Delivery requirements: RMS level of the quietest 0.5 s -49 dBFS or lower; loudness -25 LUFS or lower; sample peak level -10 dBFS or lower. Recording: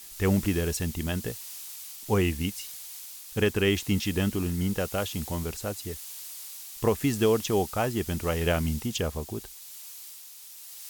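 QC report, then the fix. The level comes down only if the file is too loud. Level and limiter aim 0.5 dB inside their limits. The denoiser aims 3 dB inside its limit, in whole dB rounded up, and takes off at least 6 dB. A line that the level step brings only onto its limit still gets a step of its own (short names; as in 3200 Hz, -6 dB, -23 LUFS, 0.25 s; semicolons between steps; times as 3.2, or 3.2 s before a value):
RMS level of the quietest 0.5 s -46 dBFS: fail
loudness -29.0 LUFS: OK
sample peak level -11.0 dBFS: OK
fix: denoiser 6 dB, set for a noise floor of -46 dBFS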